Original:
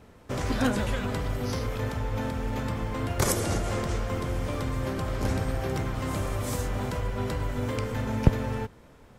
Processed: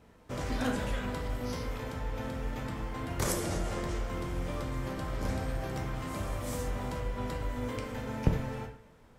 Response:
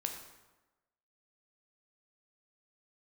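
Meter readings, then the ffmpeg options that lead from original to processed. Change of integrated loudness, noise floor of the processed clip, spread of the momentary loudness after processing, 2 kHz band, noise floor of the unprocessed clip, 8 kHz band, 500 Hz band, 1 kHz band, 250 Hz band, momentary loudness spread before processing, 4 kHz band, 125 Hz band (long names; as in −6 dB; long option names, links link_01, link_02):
−5.5 dB, −58 dBFS, 6 LU, −5.0 dB, −53 dBFS, −6.0 dB, −5.5 dB, −5.0 dB, −5.5 dB, 6 LU, −5.5 dB, −7.0 dB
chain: -filter_complex "[1:a]atrim=start_sample=2205,asetrate=88200,aresample=44100[link_01];[0:a][link_01]afir=irnorm=-1:irlink=0"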